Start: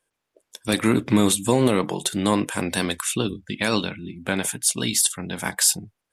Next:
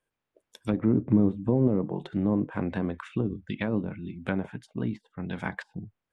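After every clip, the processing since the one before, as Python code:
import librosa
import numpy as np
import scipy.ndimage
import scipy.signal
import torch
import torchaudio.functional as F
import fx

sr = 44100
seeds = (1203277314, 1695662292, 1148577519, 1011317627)

y = fx.env_lowpass_down(x, sr, base_hz=540.0, full_db=-18.5)
y = fx.bass_treble(y, sr, bass_db=5, treble_db=-9)
y = y * librosa.db_to_amplitude(-5.5)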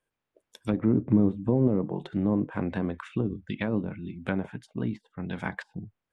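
y = x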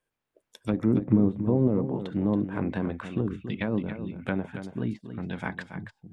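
y = x + 10.0 ** (-10.0 / 20.0) * np.pad(x, (int(279 * sr / 1000.0), 0))[:len(x)]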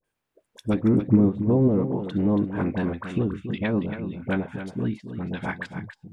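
y = fx.dispersion(x, sr, late='highs', ms=43.0, hz=1000.0)
y = y * librosa.db_to_amplitude(3.5)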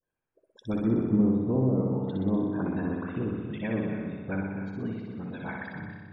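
y = fx.spec_topn(x, sr, count=64)
y = fx.room_flutter(y, sr, wall_m=10.6, rt60_s=1.3)
y = y * librosa.db_to_amplitude(-7.5)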